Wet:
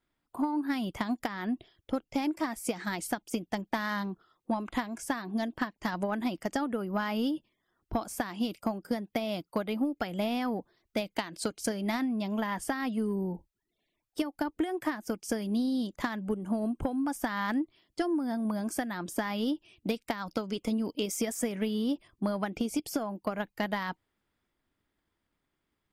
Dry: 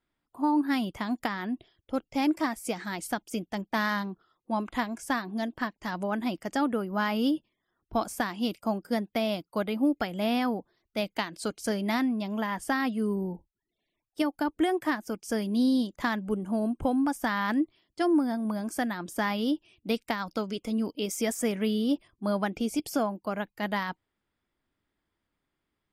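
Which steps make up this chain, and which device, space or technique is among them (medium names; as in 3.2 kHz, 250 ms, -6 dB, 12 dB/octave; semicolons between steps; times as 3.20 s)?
drum-bus smash (transient shaper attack +8 dB, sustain +2 dB; compression 6:1, threshold -26 dBFS, peak gain reduction 11.5 dB; saturation -18 dBFS, distortion -21 dB)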